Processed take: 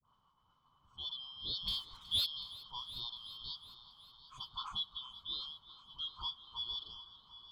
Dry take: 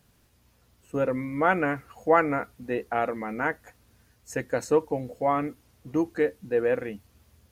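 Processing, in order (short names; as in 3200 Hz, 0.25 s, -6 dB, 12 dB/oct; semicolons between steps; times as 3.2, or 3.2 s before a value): four-band scrambler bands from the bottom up 3412; LPF 5000 Hz 12 dB/oct; expander -60 dBFS; EQ curve 170 Hz 0 dB, 350 Hz -15 dB, 670 Hz -13 dB, 1100 Hz +8 dB, 1800 Hz -26 dB; 1.63–2.22 sample leveller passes 2; dispersion highs, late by 48 ms, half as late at 1100 Hz; on a send: multi-head echo 0.371 s, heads first and second, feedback 55%, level -18.5 dB; on the sum: gain +9 dB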